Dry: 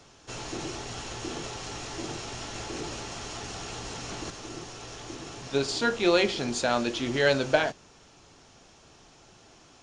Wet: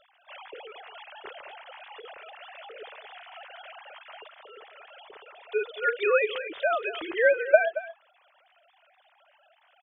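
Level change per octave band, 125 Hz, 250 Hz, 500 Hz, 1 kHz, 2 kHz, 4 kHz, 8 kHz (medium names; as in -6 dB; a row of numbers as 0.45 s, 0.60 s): under -35 dB, -15.5 dB, +2.0 dB, -1.0 dB, +2.5 dB, -10.0 dB, under -40 dB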